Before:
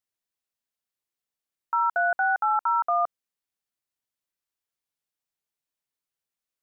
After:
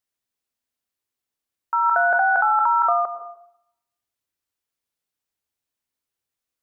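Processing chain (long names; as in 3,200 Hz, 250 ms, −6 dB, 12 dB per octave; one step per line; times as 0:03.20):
on a send at −11 dB: convolution reverb RT60 0.70 s, pre-delay 92 ms
0:01.86–0:02.93: on the sum: envelope flattener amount 100%
level +3 dB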